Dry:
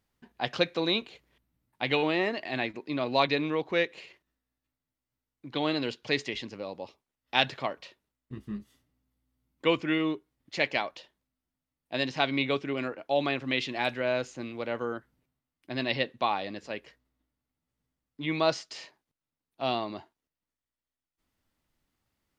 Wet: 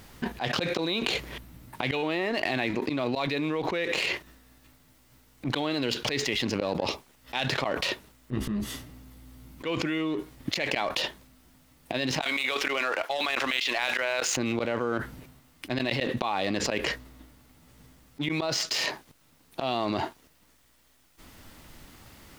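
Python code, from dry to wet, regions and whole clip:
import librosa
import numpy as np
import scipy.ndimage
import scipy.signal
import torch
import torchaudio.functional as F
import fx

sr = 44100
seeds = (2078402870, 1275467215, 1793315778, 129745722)

y = fx.chain(x, sr, fx.highpass(hz=800.0, slope=12),
    fx.over_compress(threshold_db=-37.0, ratio=-0.5),
    fx.leveller(passes=1), at=(12.21, 14.37))
y = fx.leveller(y, sr, passes=1)
y = fx.auto_swell(y, sr, attack_ms=127.0)
y = fx.env_flatten(y, sr, amount_pct=100)
y = F.gain(torch.from_numpy(y), -9.0).numpy()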